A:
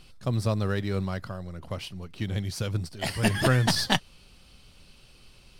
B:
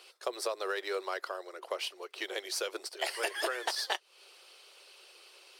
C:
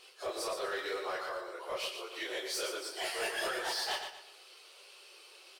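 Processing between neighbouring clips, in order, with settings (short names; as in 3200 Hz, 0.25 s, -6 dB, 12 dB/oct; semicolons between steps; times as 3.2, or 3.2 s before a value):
Chebyshev high-pass 360 Hz, order 6; harmonic-percussive split percussive +5 dB; compressor 8:1, threshold -30 dBFS, peak gain reduction 16 dB
phase scrambler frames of 0.1 s; soft clip -29 dBFS, distortion -16 dB; feedback echo 0.118 s, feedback 34%, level -7 dB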